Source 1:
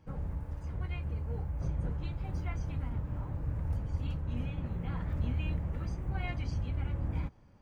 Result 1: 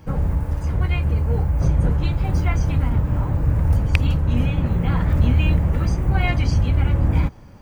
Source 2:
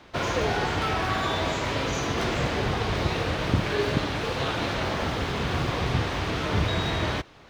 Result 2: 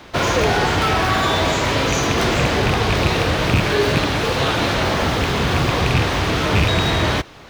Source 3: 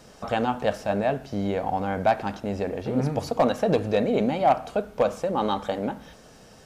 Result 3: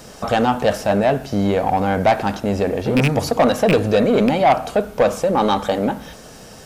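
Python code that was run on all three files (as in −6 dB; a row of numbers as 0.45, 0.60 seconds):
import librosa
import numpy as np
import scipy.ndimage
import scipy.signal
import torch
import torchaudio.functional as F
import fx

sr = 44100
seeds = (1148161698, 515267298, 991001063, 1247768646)

y = fx.rattle_buzz(x, sr, strikes_db=-23.0, level_db=-16.0)
y = fx.high_shelf(y, sr, hz=8800.0, db=8.0)
y = 10.0 ** (-17.5 / 20.0) * np.tanh(y / 10.0 ** (-17.5 / 20.0))
y = y * 10.0 ** (-18 / 20.0) / np.sqrt(np.mean(np.square(y)))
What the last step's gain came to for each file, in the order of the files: +16.5, +9.5, +9.5 decibels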